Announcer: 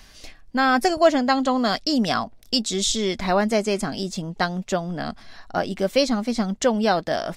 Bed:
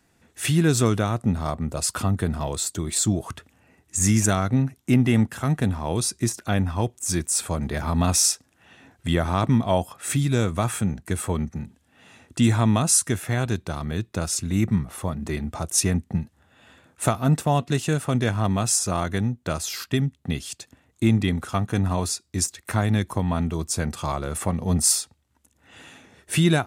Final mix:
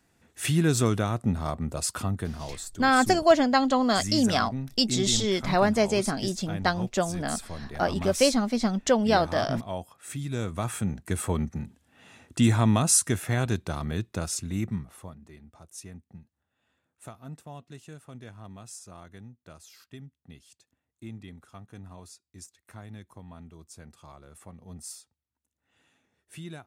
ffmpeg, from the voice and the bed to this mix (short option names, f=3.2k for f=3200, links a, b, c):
-filter_complex "[0:a]adelay=2250,volume=-2dB[a];[1:a]volume=7dB,afade=t=out:st=1.73:d=0.92:silence=0.354813,afade=t=in:st=10.15:d=1.12:silence=0.298538,afade=t=out:st=13.81:d=1.46:silence=0.1[b];[a][b]amix=inputs=2:normalize=0"